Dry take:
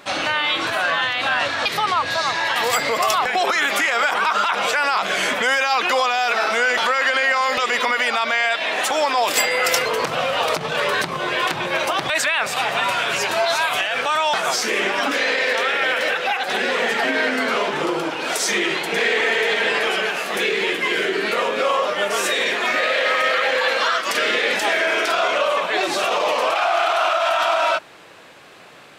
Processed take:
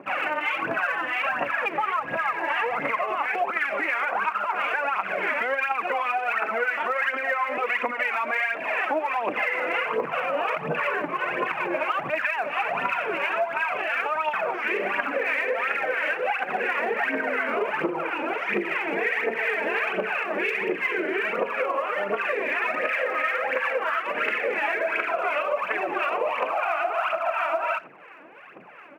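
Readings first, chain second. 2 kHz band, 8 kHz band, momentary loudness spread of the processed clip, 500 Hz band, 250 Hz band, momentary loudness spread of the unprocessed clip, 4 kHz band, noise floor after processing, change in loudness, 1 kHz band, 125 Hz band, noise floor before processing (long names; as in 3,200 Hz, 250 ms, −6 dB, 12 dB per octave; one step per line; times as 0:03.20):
−5.5 dB, below −25 dB, 2 LU, −5.5 dB, −5.0 dB, 3 LU, −18.0 dB, −34 dBFS, −6.5 dB, −5.5 dB, −7.0 dB, −28 dBFS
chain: two-band tremolo in antiphase 2.9 Hz, depth 70%, crossover 880 Hz
elliptic low-pass filter 2,600 Hz, stop band 40 dB
phase shifter 1.4 Hz, delay 3.6 ms, feedback 65%
downward compressor, threshold −22 dBFS, peak gain reduction 9 dB
high-pass filter 160 Hz 24 dB per octave
far-end echo of a speakerphone 90 ms, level −22 dB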